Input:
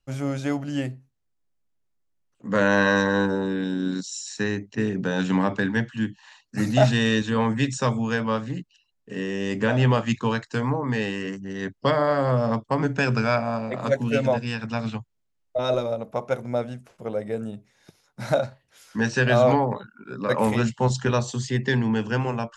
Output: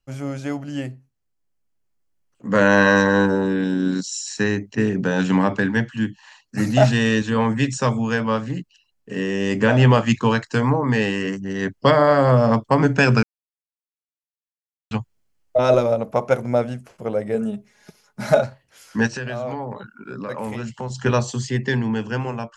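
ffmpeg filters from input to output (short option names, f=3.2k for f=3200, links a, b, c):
-filter_complex "[0:a]asettb=1/sr,asplit=3[a][b][c];[a]atrim=end=17.344[d];[b]atrim=start=17.34:end=18.42,asetpts=PTS-STARTPTS,afade=t=in:d=0.004:c=qsin,afade=t=out:st=1.076:d=0.004:c=qsin,aecho=1:1:4.8:0.65,atrim=end_sample=47628[e];[c]atrim=start=18.416[f];[d][e]acrossfade=d=0.004:c1=hsin:c2=qsin[g];[g][f]acrossfade=d=0.004:c1=qsin:c2=hsin,asplit=3[h][i][j];[h]afade=t=out:st=19.06:d=0.02[k];[i]acompressor=threshold=-34dB:ratio=3:attack=3.2:release=140:knee=1:detection=peak,afade=t=in:st=19.06:d=0.02,afade=t=out:st=21.04:d=0.02[l];[j]afade=t=in:st=21.04:d=0.02[m];[k][l][m]amix=inputs=3:normalize=0,asplit=3[n][o][p];[n]atrim=end=13.23,asetpts=PTS-STARTPTS,afade=t=out:st=13.226:d=0.004:c=hsin[q];[o]atrim=start=13.23:end=14.91,asetpts=PTS-STARTPTS,volume=0[r];[p]atrim=start=14.91,asetpts=PTS-STARTPTS,afade=t=in:d=0.004:c=hsin[s];[q][r][s]concat=n=3:v=0:a=1,bandreject=f=3.7k:w=12,dynaudnorm=f=340:g=11:m=11.5dB,volume=-1dB"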